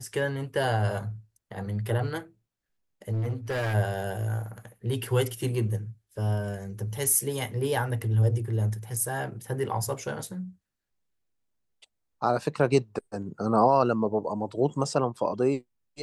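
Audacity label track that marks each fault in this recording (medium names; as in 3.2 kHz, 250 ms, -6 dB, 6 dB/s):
3.120000	3.750000	clipped -25.5 dBFS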